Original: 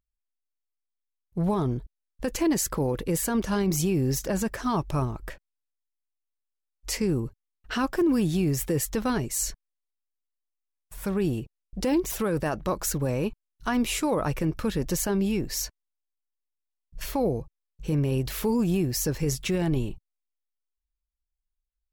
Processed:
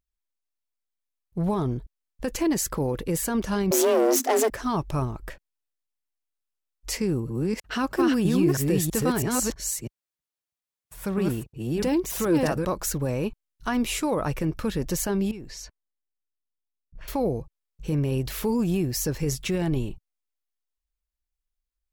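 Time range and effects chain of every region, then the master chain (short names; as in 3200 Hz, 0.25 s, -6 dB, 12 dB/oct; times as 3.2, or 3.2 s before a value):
3.71–4.5 gate -33 dBFS, range -10 dB + sample leveller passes 3 + frequency shift +220 Hz
6.95–12.65 reverse delay 0.325 s, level -1 dB + HPF 45 Hz
15.31–17.08 low-pass opened by the level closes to 310 Hz, open at -24.5 dBFS + compressor 4:1, threshold -37 dBFS + mismatched tape noise reduction encoder only
whole clip: dry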